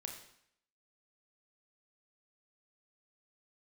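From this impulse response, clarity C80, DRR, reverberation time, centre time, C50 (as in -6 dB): 9.0 dB, 2.5 dB, 0.70 s, 27 ms, 6.5 dB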